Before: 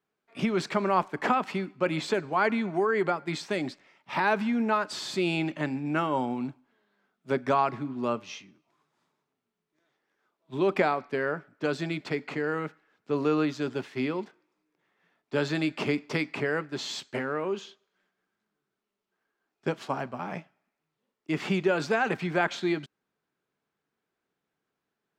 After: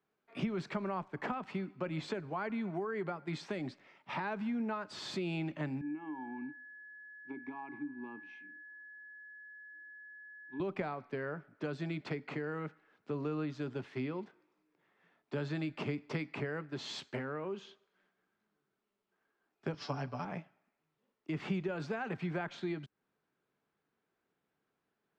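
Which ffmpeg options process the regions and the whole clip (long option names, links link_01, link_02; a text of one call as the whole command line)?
ffmpeg -i in.wav -filter_complex "[0:a]asettb=1/sr,asplit=3[link_01][link_02][link_03];[link_01]atrim=end=5.814[link_04];[link_02]atrim=start=5.81:end=10.6,asetpts=PTS-STARTPTS,afade=type=in:duration=0.004:curve=qsin,afade=type=out:start_time=4.786:duration=0.004:curve=qsin,acompressor=threshold=-26dB:ratio=6:attack=3.2:release=140:knee=1:detection=peak,asplit=3[link_05][link_06][link_07];[link_05]bandpass=frequency=300:width_type=q:width=8,volume=0dB[link_08];[link_06]bandpass=frequency=870:width_type=q:width=8,volume=-6dB[link_09];[link_07]bandpass=frequency=2240:width_type=q:width=8,volume=-9dB[link_10];[link_08][link_09][link_10]amix=inputs=3:normalize=0,aeval=exprs='val(0)+0.00355*sin(2*PI*1700*n/s)':channel_layout=same[link_11];[link_03]atrim=start=10.596[link_12];[link_04][link_11]acrossfade=duration=0.004:curve1=hsin:curve2=qsin[link_13];[link_13][link_12]acrossfade=duration=0.004:curve1=qsin:curve2=hsin,asettb=1/sr,asplit=3[link_14][link_15][link_16];[link_14]atrim=end=19.734[link_17];[link_15]atrim=start=19.73:end=20.25,asetpts=PTS-STARTPTS,afade=type=in:duration=0.004:curve=qsin,afade=type=out:start_time=0.516:duration=0.004:curve=qsin,lowpass=frequency=5300:width_type=q:width=8.4,aecho=1:1:6.9:0.81,atrim=end_sample=22932[link_18];[link_16]atrim=start=20.246[link_19];[link_17][link_18]acrossfade=duration=0.004:curve1=hsin:curve2=qsin[link_20];[link_20][link_19]acrossfade=duration=0.004:curve1=qsin:curve2=hsin,aemphasis=mode=reproduction:type=50fm,acrossover=split=140[link_21][link_22];[link_22]acompressor=threshold=-40dB:ratio=3[link_23];[link_21][link_23]amix=inputs=2:normalize=0" out.wav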